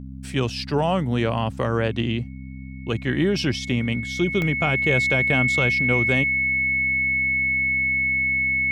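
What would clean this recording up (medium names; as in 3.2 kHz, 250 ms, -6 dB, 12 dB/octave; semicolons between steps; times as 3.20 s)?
de-hum 65.6 Hz, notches 4; band-stop 2.2 kHz, Q 30; interpolate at 4.42 s, 1.5 ms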